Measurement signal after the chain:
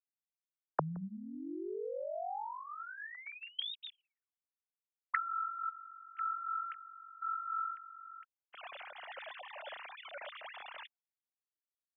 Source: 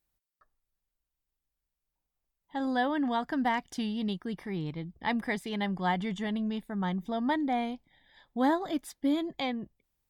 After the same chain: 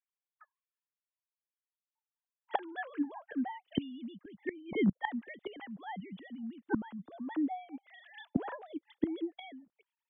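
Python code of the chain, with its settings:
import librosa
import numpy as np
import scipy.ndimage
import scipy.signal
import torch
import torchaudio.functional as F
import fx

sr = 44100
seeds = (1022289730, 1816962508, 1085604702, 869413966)

p1 = fx.sine_speech(x, sr)
p2 = fx.low_shelf(p1, sr, hz=330.0, db=3.5)
p3 = fx.gate_flip(p2, sr, shuts_db=-33.0, range_db=-26)
p4 = fx.rider(p3, sr, range_db=5, speed_s=0.5)
p5 = p3 + (p4 * librosa.db_to_amplitude(-2.5))
p6 = fx.band_widen(p5, sr, depth_pct=40)
y = p6 * librosa.db_to_amplitude(9.5)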